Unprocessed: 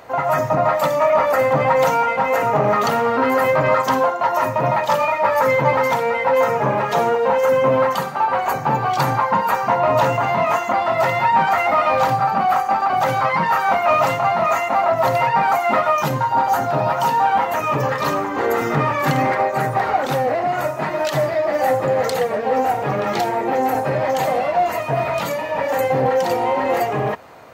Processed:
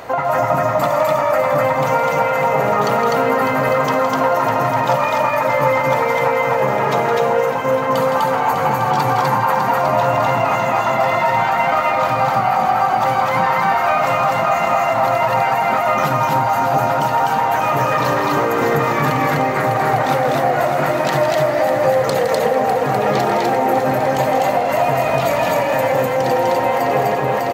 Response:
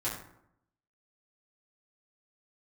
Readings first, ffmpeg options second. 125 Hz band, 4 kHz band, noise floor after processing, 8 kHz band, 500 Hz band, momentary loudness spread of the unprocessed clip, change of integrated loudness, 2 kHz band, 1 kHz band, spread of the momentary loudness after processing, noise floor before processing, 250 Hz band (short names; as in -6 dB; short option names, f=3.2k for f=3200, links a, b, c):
+2.0 dB, +2.5 dB, -19 dBFS, +2.5 dB, +1.5 dB, 4 LU, +2.0 dB, +2.0 dB, +2.0 dB, 1 LU, -25 dBFS, +2.5 dB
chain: -filter_complex "[0:a]asplit=2[a][b];[b]aecho=0:1:601|1202|1803|2404|3005|3606|4207:0.355|0.199|0.111|0.0623|0.0349|0.0195|0.0109[c];[a][c]amix=inputs=2:normalize=0,acompressor=threshold=-25dB:ratio=6,asplit=2[d][e];[e]aecho=0:1:163.3|250.7:0.355|0.891[f];[d][f]amix=inputs=2:normalize=0,volume=8.5dB"